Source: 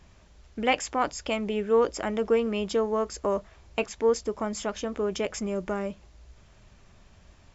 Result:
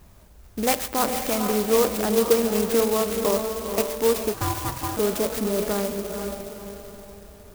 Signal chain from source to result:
in parallel at −3 dB: brickwall limiter −22 dBFS, peak gain reduction 11.5 dB
on the sum: feedback delay with all-pass diffusion 476 ms, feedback 43%, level −5 dB
on a send at −14.5 dB: convolution reverb RT60 0.95 s, pre-delay 47 ms
0:04.34–0:04.97: on the sum: ring modulation 550 Hz
converter with an unsteady clock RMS 0.1 ms

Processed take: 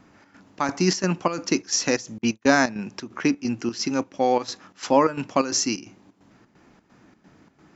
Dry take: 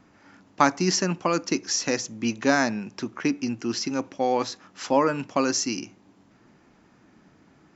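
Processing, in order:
0:02.18–0:02.79: noise gate −28 dBFS, range −33 dB
square-wave tremolo 2.9 Hz, depth 65%, duty 70%
level +3 dB

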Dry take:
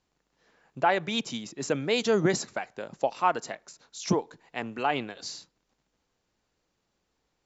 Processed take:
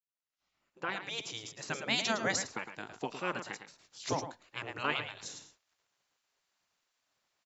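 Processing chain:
fade in at the beginning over 1.91 s
single-tap delay 109 ms −9.5 dB
0:02.39–0:03.52: dynamic equaliser 4,700 Hz, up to −5 dB, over −50 dBFS, Q 1.5
gate on every frequency bin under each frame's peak −10 dB weak

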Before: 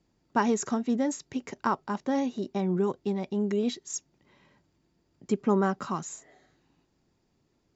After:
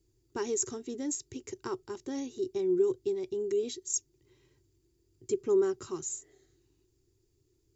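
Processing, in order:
drawn EQ curve 120 Hz 0 dB, 200 Hz −26 dB, 370 Hz +2 dB, 600 Hz −22 dB, 1,700 Hz −16 dB, 4,900 Hz −6 dB, 8,800 Hz +4 dB
level +4 dB

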